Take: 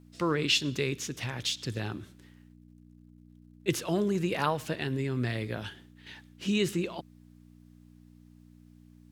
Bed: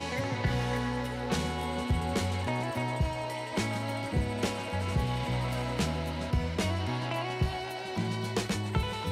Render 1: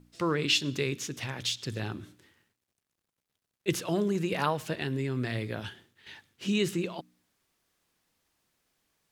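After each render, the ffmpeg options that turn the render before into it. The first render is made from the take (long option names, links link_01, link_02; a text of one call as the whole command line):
ffmpeg -i in.wav -af "bandreject=frequency=60:width_type=h:width=4,bandreject=frequency=120:width_type=h:width=4,bandreject=frequency=180:width_type=h:width=4,bandreject=frequency=240:width_type=h:width=4,bandreject=frequency=300:width_type=h:width=4" out.wav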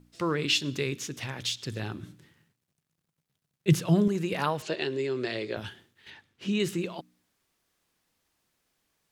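ffmpeg -i in.wav -filter_complex "[0:a]asettb=1/sr,asplit=3[link_01][link_02][link_03];[link_01]atrim=end=2.034[link_04];[link_02]atrim=start=2.03:end=4.08,asetpts=PTS-STARTPTS,afade=type=in:duration=0.004:curve=qsin,afade=type=out:start_time=2.046:duration=0.004:curve=qsin,equalizer=frequency=150:width_type=o:width=0.77:gain=15[link_05];[link_03]atrim=start=4.076[link_06];[link_04][link_05]acrossfade=duration=0.004:curve1=hsin:curve2=qsin[link_07];[link_07][link_06]acrossfade=duration=0.004:curve1=qsin:curve2=hsin,asettb=1/sr,asplit=3[link_08][link_09][link_10];[link_08]atrim=end=4.624[link_11];[link_09]atrim=start=4.62:end=5.57,asetpts=PTS-STARTPTS,afade=type=in:duration=0.004:curve=qsin,afade=type=out:start_time=0.946:duration=0.004:curve=qsin,highpass=220,equalizer=frequency=250:width_type=q:width=4:gain=-4,equalizer=frequency=380:width_type=q:width=4:gain=9,equalizer=frequency=570:width_type=q:width=4:gain=5,equalizer=frequency=2800:width_type=q:width=4:gain=4,equalizer=frequency=4300:width_type=q:width=4:gain=8,equalizer=frequency=6900:width_type=q:width=4:gain=4,lowpass=frequency=8000:width=0.5412,lowpass=frequency=8000:width=1.3066[link_12];[link_10]atrim=start=5.566[link_13];[link_11][link_12]acrossfade=duration=0.004:curve1=hsin:curve2=qsin[link_14];[link_14][link_13]acrossfade=duration=0.004:curve1=qsin:curve2=hsin,asettb=1/sr,asplit=3[link_15][link_16][link_17];[link_15]atrim=end=6.104[link_18];[link_16]atrim=start=6.1:end=6.6,asetpts=PTS-STARTPTS,afade=type=in:duration=0.004:curve=qsin,afade=type=out:start_time=0.496:duration=0.004:curve=qsin,highshelf=frequency=6200:gain=-11.5[link_19];[link_17]atrim=start=6.596[link_20];[link_18][link_19]acrossfade=duration=0.004:curve1=hsin:curve2=qsin[link_21];[link_21][link_20]acrossfade=duration=0.004:curve1=qsin:curve2=hsin" out.wav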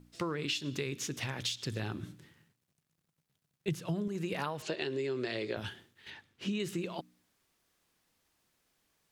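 ffmpeg -i in.wav -af "acompressor=threshold=-31dB:ratio=10" out.wav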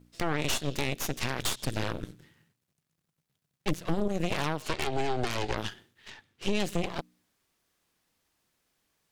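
ffmpeg -i in.wav -af "aeval=exprs='0.119*(cos(1*acos(clip(val(0)/0.119,-1,1)))-cos(1*PI/2))+0.0422*(cos(8*acos(clip(val(0)/0.119,-1,1)))-cos(8*PI/2))':channel_layout=same" out.wav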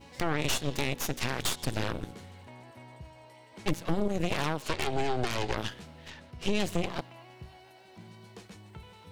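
ffmpeg -i in.wav -i bed.wav -filter_complex "[1:a]volume=-18dB[link_01];[0:a][link_01]amix=inputs=2:normalize=0" out.wav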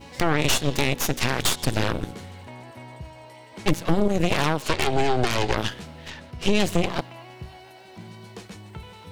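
ffmpeg -i in.wav -af "volume=8dB" out.wav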